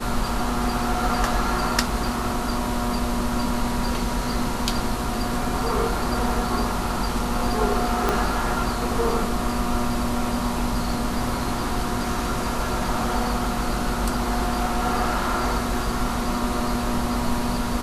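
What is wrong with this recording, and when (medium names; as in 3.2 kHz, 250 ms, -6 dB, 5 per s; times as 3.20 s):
8.09 s: pop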